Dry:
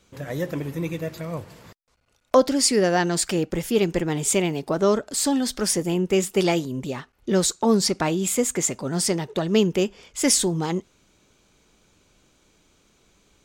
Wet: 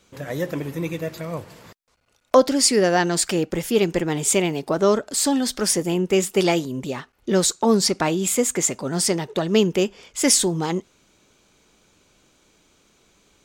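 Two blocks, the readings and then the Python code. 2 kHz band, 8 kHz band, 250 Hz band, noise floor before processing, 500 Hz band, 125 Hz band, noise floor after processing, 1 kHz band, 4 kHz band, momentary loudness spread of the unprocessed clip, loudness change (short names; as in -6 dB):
+2.5 dB, +2.5 dB, +1.0 dB, -65 dBFS, +2.0 dB, 0.0 dB, -63 dBFS, +2.5 dB, +2.5 dB, 11 LU, +2.0 dB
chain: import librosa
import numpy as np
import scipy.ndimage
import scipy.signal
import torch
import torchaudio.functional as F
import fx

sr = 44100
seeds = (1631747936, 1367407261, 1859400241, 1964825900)

y = fx.low_shelf(x, sr, hz=140.0, db=-6.0)
y = y * 10.0 ** (2.5 / 20.0)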